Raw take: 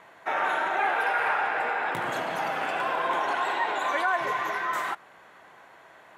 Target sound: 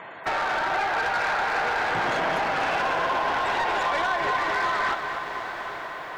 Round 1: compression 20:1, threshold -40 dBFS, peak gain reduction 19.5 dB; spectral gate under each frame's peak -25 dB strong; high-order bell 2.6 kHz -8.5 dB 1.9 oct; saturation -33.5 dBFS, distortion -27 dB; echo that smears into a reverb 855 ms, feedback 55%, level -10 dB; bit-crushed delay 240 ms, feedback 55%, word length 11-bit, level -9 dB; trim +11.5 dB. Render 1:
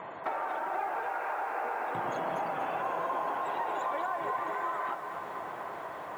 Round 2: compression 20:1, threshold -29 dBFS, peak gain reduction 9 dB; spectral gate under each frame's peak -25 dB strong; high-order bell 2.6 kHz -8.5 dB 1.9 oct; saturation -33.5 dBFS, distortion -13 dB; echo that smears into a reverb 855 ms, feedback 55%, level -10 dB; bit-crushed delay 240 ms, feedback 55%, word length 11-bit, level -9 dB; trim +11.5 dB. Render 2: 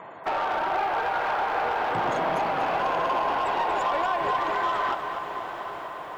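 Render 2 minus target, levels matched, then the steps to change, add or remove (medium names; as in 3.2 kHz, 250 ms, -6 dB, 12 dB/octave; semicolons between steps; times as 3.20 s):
2 kHz band -5.0 dB
remove: high-order bell 2.6 kHz -8.5 dB 1.9 oct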